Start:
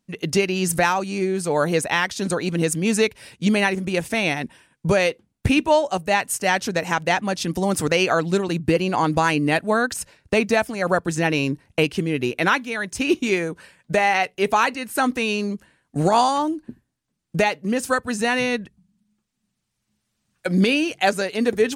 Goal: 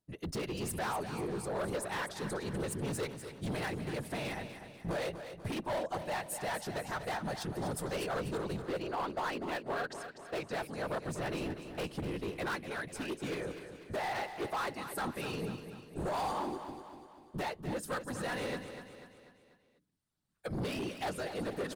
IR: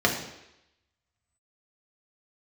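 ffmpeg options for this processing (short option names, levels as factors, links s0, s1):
-filter_complex "[0:a]asettb=1/sr,asplit=3[s0][s1][s2];[s0]atrim=end=8.644[s3];[s1]atrim=start=8.64:end=10.55,asetpts=PTS-STARTPTS,afade=t=in:d=0.004:c=qsin,afade=t=out:st=1.906:d=0.004:c=qsin,acrossover=split=260 7200:gain=0.0891 1 0.0891[s4][s5][s6];[s4][s5][s6]amix=inputs=3:normalize=0[s7];[s2]atrim=start=10.546[s8];[s3][s7]acrossfade=d=0.004:c1=hsin:c2=qsin[s9];[s9][s8]acrossfade=d=0.004:c1=qsin:c2=hsin,afftfilt=real='hypot(re,im)*cos(2*PI*random(0))':imag='hypot(re,im)*sin(2*PI*random(1))':win_size=512:overlap=0.75,asoftclip=type=hard:threshold=0.0501,equalizer=f=250:t=o:w=0.67:g=-4,equalizer=f=2500:t=o:w=0.67:g=-7,equalizer=f=6300:t=o:w=0.67:g=-7,asplit=2[s10][s11];[s11]aecho=0:1:245|490|735|980|1225:0.316|0.158|0.0791|0.0395|0.0198[s12];[s10][s12]amix=inputs=2:normalize=0,volume=0.531"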